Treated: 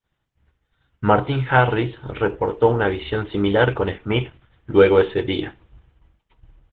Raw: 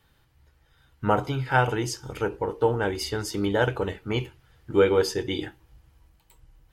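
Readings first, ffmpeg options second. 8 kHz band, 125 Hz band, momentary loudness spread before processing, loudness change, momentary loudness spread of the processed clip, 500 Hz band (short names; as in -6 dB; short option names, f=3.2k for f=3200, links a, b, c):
under -25 dB, +6.5 dB, 10 LU, +6.0 dB, 10 LU, +6.5 dB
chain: -af "agate=range=-33dB:threshold=-51dB:ratio=3:detection=peak,aresample=8000,aresample=44100,volume=6.5dB" -ar 48000 -c:a libopus -b:a 12k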